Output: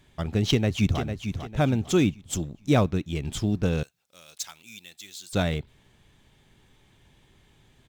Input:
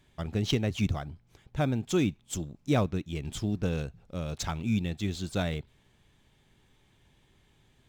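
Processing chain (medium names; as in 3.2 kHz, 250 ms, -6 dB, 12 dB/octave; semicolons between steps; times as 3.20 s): 0.50–1.01 s: echo throw 450 ms, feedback 35%, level -8 dB; 3.83–5.33 s: differentiator; trim +5 dB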